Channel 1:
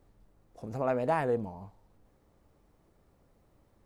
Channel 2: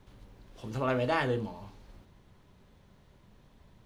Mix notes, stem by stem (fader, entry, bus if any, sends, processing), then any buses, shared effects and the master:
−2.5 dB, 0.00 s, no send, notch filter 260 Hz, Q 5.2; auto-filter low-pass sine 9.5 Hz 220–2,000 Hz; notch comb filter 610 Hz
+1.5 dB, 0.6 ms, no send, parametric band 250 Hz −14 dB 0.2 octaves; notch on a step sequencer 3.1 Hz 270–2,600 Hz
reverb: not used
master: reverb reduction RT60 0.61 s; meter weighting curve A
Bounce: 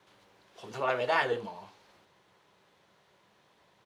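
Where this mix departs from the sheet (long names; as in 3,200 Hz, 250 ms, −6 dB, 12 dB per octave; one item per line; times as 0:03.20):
stem 2: missing notch on a step sequencer 3.1 Hz 270–2,600 Hz
master: missing reverb reduction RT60 0.61 s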